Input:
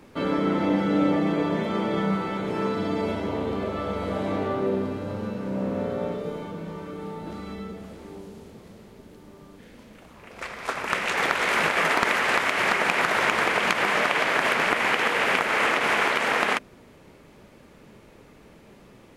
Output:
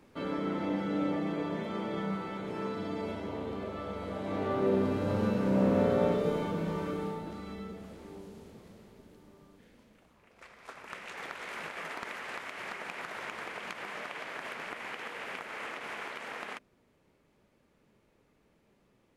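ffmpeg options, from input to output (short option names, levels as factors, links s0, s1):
-af "volume=1.26,afade=t=in:st=4.23:d=0.99:silence=0.266073,afade=t=out:st=6.89:d=0.41:silence=0.398107,afade=t=out:st=8.54:d=1.8:silence=0.251189"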